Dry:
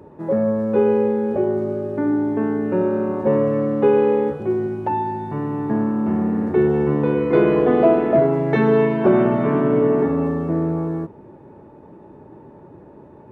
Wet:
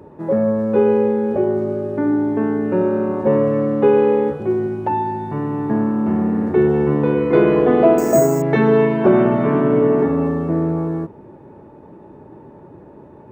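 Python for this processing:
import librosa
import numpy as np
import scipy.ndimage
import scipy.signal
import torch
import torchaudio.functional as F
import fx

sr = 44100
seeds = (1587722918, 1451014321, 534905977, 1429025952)

y = fx.resample_bad(x, sr, factor=6, down='filtered', up='hold', at=(7.98, 8.42))
y = F.gain(torch.from_numpy(y), 2.0).numpy()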